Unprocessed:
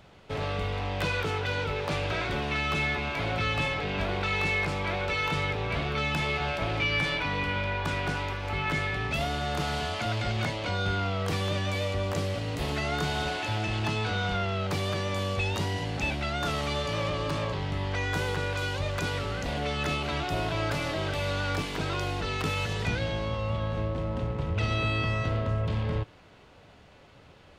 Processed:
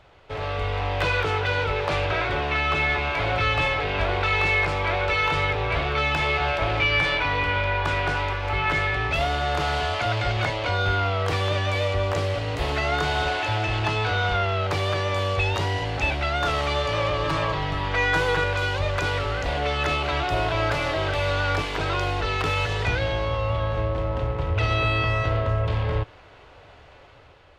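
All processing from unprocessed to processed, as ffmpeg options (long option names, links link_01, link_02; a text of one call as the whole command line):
ffmpeg -i in.wav -filter_complex "[0:a]asettb=1/sr,asplit=3[link_01][link_02][link_03];[link_01]atrim=end=2.054[link_04];[link_02]atrim=start=2.05:end=2.9,asetpts=PTS-STARTPTS,afade=type=in:duration=0.004:curve=qsin,afade=type=out:start_time=0.846:duration=0.004:curve=qsin,highpass=46,highshelf=frequency=5700:gain=-6[link_05];[link_03]atrim=start=2.896[link_06];[link_04][link_05]acrossfade=duration=0.004:curve1=hsin:curve2=qsin[link_07];[link_07][link_06]acrossfade=duration=0.004:curve1=qsin:curve2=hsin,asettb=1/sr,asplit=3[link_08][link_09][link_10];[link_08]atrim=end=17.234[link_11];[link_09]atrim=start=17.23:end=18.44,asetpts=PTS-STARTPTS,afade=type=in:duration=0.004:curve=qsin,afade=type=out:start_time=1.206:duration=0.004:curve=qsin,aecho=1:1:6.2:0.69,atrim=end_sample=53361,asoftclip=type=hard:threshold=-20dB[link_12];[link_10]atrim=start=18.436[link_13];[link_11][link_12]acrossfade=duration=0.004:curve1=hsin:curve2=qsin[link_14];[link_14][link_13]acrossfade=duration=0.004:curve1=qsin:curve2=hsin,equalizer=frequency=200:width_type=o:width=1.1:gain=-14.5,dynaudnorm=framelen=130:gausssize=9:maxgain=5dB,lowpass=frequency=2800:poles=1,volume=3.5dB" out.wav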